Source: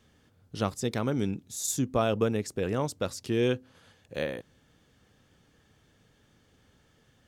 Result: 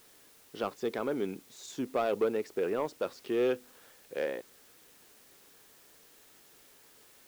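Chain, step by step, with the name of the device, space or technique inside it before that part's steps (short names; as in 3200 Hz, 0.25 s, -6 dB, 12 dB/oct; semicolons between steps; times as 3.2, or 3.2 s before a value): tape answering machine (BPF 340–2800 Hz; soft clip -23 dBFS, distortion -14 dB; wow and flutter; white noise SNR 22 dB); bell 400 Hz +4.5 dB 0.49 oct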